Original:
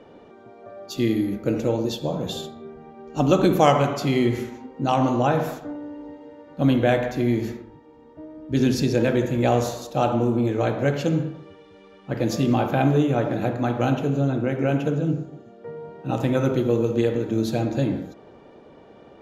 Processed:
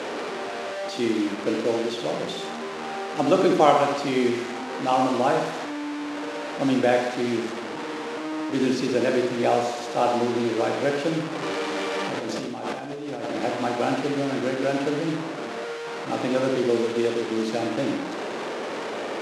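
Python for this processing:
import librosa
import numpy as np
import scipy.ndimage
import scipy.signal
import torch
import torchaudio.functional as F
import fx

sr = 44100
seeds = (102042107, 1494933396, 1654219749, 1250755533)

y = fx.delta_mod(x, sr, bps=64000, step_db=-24.0)
y = scipy.signal.sosfilt(scipy.signal.butter(2, 290.0, 'highpass', fs=sr, output='sos'), y)
y = fx.over_compress(y, sr, threshold_db=-30.0, ratio=-1.0, at=(11.33, 13.35))
y = scipy.signal.sosfilt(scipy.signal.butter(2, 7300.0, 'lowpass', fs=sr, output='sos'), y)
y = fx.high_shelf(y, sr, hz=4500.0, db=-8.0)
y = fx.room_flutter(y, sr, wall_m=11.6, rt60_s=0.53)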